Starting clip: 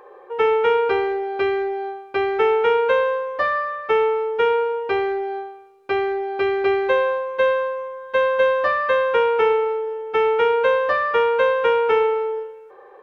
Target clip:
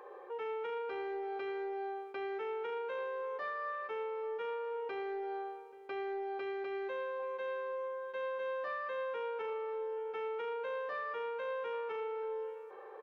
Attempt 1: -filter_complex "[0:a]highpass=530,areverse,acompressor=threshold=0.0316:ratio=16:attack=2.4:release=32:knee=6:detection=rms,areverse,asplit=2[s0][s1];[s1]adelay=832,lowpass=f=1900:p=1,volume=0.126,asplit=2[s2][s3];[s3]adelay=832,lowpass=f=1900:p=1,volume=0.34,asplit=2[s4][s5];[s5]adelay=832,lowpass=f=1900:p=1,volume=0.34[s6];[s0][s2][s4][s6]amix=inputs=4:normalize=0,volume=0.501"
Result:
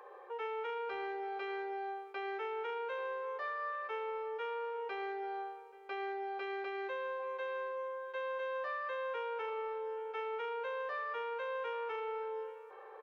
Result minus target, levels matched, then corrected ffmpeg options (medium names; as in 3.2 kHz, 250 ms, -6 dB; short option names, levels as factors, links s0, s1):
250 Hz band -2.5 dB
-filter_complex "[0:a]highpass=200,areverse,acompressor=threshold=0.0316:ratio=16:attack=2.4:release=32:knee=6:detection=rms,areverse,asplit=2[s0][s1];[s1]adelay=832,lowpass=f=1900:p=1,volume=0.126,asplit=2[s2][s3];[s3]adelay=832,lowpass=f=1900:p=1,volume=0.34,asplit=2[s4][s5];[s5]adelay=832,lowpass=f=1900:p=1,volume=0.34[s6];[s0][s2][s4][s6]amix=inputs=4:normalize=0,volume=0.501"